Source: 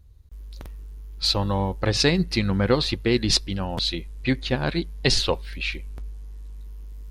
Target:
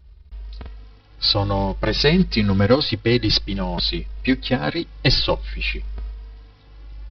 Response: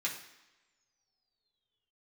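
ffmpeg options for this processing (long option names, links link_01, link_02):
-filter_complex "[0:a]aresample=11025,acrusher=bits=6:mode=log:mix=0:aa=0.000001,aresample=44100,asplit=2[link_01][link_02];[link_02]adelay=2.9,afreqshift=0.54[link_03];[link_01][link_03]amix=inputs=2:normalize=1,volume=6.5dB"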